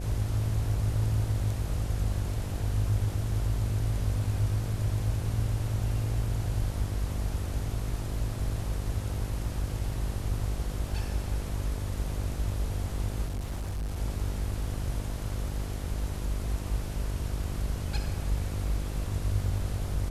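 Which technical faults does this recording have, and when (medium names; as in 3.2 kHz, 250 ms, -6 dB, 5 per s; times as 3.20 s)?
buzz 50 Hz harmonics 14 -34 dBFS
13.25–13.98 s: clipped -29.5 dBFS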